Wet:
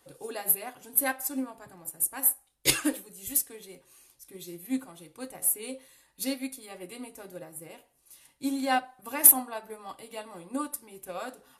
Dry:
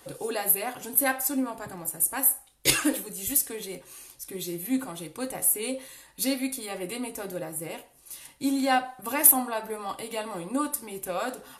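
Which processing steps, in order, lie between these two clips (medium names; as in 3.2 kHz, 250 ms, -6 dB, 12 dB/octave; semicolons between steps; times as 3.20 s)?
upward expansion 1.5:1, over -38 dBFS; trim +1.5 dB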